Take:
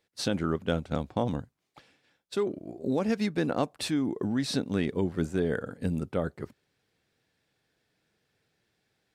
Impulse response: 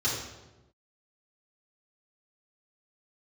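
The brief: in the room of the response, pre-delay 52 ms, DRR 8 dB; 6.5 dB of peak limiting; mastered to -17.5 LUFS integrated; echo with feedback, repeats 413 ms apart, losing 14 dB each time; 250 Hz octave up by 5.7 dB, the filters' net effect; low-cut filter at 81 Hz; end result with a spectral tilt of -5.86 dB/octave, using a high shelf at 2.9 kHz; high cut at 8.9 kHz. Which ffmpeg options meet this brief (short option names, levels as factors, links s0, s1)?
-filter_complex "[0:a]highpass=81,lowpass=8900,equalizer=f=250:t=o:g=7,highshelf=f=2900:g=6,alimiter=limit=0.158:level=0:latency=1,aecho=1:1:413|826:0.2|0.0399,asplit=2[s0][s1];[1:a]atrim=start_sample=2205,adelay=52[s2];[s1][s2]afir=irnorm=-1:irlink=0,volume=0.133[s3];[s0][s3]amix=inputs=2:normalize=0,volume=2.82"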